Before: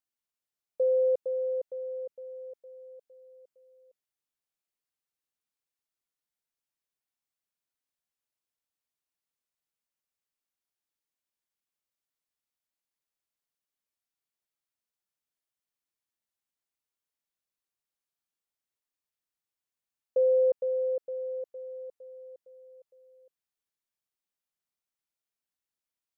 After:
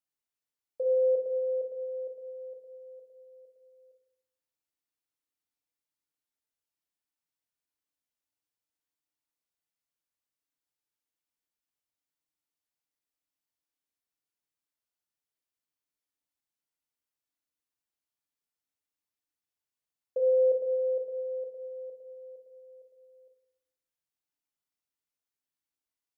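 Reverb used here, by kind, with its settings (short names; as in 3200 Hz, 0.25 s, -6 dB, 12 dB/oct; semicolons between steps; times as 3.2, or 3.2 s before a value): FDN reverb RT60 0.82 s, low-frequency decay 1.45×, high-frequency decay 0.9×, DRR 1.5 dB; gain -4.5 dB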